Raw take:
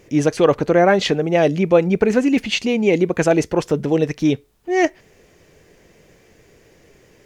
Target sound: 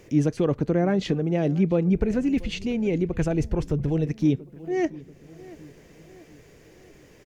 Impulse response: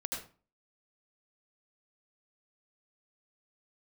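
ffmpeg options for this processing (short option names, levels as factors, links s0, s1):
-filter_complex "[0:a]acrossover=split=300[s0][s1];[s1]acompressor=threshold=0.00178:ratio=1.5[s2];[s0][s2]amix=inputs=2:normalize=0,asplit=2[s3][s4];[s4]adelay=685,lowpass=f=2800:p=1,volume=0.1,asplit=2[s5][s6];[s6]adelay=685,lowpass=f=2800:p=1,volume=0.5,asplit=2[s7][s8];[s8]adelay=685,lowpass=f=2800:p=1,volume=0.5,asplit=2[s9][s10];[s10]adelay=685,lowpass=f=2800:p=1,volume=0.5[s11];[s3][s5][s7][s9][s11]amix=inputs=5:normalize=0,asplit=3[s12][s13][s14];[s12]afade=t=out:st=1.93:d=0.02[s15];[s13]asubboost=boost=10.5:cutoff=72,afade=t=in:st=1.93:d=0.02,afade=t=out:st=4.05:d=0.02[s16];[s14]afade=t=in:st=4.05:d=0.02[s17];[s15][s16][s17]amix=inputs=3:normalize=0"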